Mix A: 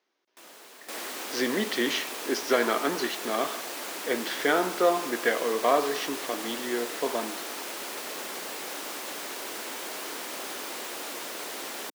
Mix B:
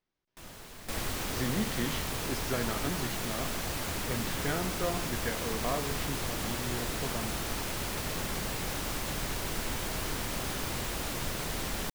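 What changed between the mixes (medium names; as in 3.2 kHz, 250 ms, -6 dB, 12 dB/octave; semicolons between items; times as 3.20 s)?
speech -11.5 dB; master: remove high-pass 300 Hz 24 dB/octave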